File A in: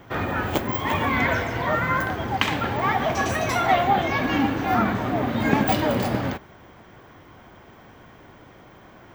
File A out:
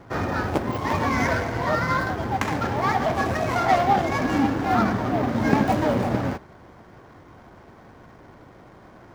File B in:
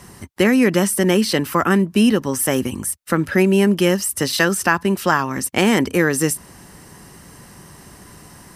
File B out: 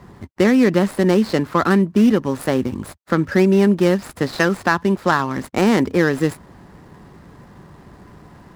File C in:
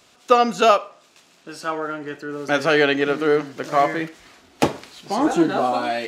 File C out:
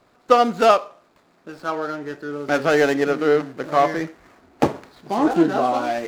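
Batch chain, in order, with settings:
running median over 15 samples
high-shelf EQ 9,400 Hz −5.5 dB
level +1 dB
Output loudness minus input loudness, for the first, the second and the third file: 0.0, 0.0, 0.0 LU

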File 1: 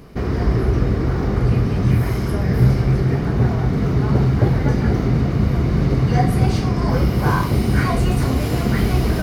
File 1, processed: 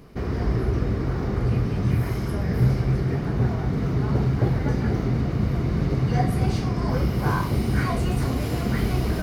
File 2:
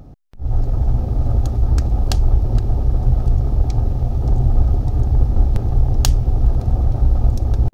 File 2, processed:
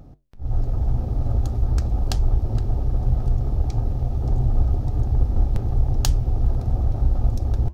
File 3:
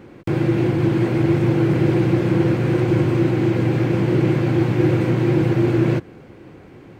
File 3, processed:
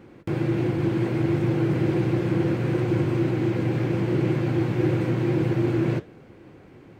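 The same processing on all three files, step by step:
flanger 1.8 Hz, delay 5.6 ms, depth 7 ms, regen −80%
loudness normalisation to −24 LKFS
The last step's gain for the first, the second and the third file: −1.0, −0.5, −1.0 decibels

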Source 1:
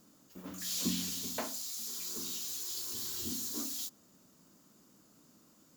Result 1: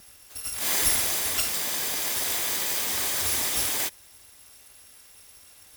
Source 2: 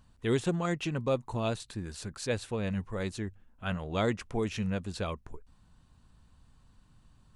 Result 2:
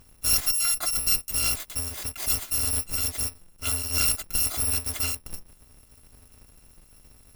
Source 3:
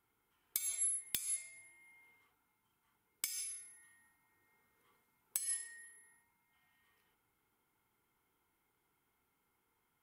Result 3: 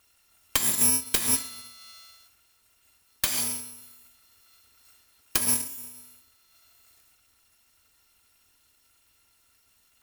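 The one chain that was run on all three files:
samples in bit-reversed order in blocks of 256 samples
asymmetric clip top −33.5 dBFS
loudness normalisation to −24 LKFS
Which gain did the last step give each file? +12.5, +8.5, +15.5 decibels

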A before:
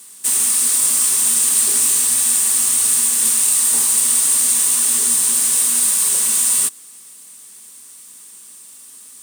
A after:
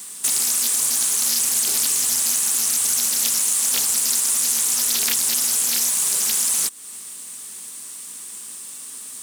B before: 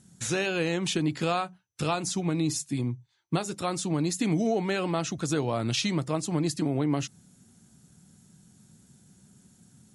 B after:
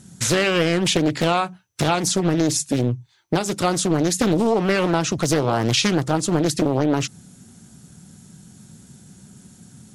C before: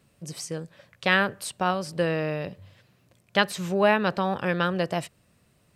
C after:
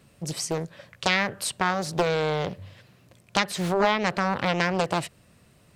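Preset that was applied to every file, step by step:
downward compressor 2.5 to 1, threshold −27 dBFS
highs frequency-modulated by the lows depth 0.89 ms
normalise the peak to −6 dBFS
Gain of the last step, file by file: +6.0, +11.5, +6.0 decibels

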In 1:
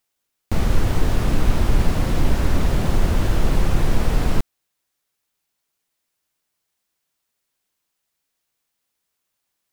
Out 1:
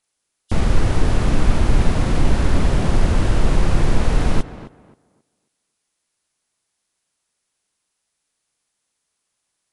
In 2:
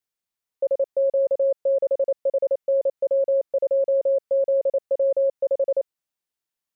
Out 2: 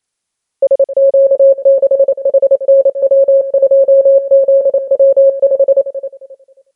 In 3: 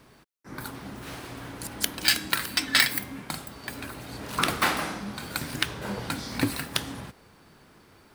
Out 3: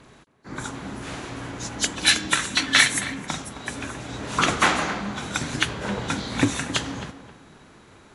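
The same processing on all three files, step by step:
hearing-aid frequency compression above 2,800 Hz 1.5 to 1
tape delay 267 ms, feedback 27%, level −11.5 dB, low-pass 2,000 Hz
normalise the peak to −1.5 dBFS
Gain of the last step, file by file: +2.0, +12.5, +5.0 decibels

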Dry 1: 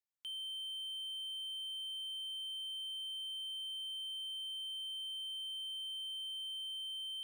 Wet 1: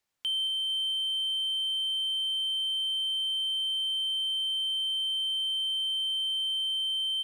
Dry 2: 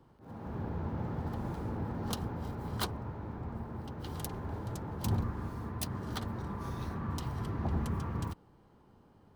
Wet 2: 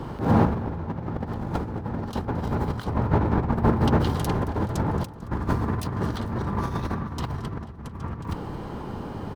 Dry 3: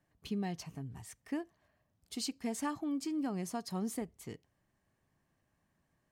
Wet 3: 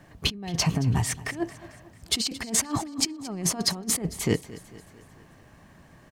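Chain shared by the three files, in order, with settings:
high-shelf EQ 8,000 Hz −8.5 dB
compressor whose output falls as the input rises −44 dBFS, ratio −0.5
repeating echo 223 ms, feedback 54%, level −18 dB
loudness normalisation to −27 LKFS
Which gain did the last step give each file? +14.5, +19.5, +18.0 decibels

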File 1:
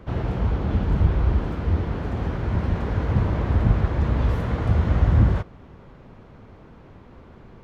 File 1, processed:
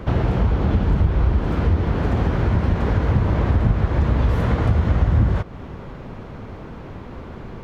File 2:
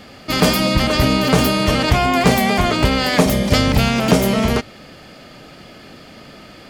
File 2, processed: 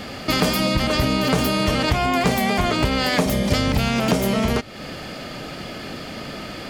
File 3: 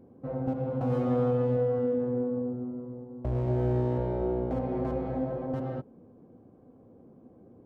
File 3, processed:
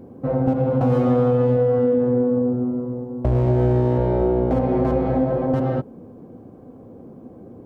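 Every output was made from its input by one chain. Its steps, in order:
downward compressor 3 to 1, threshold −28 dBFS
loudness normalisation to −20 LKFS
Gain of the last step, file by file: +11.0, +7.5, +13.0 decibels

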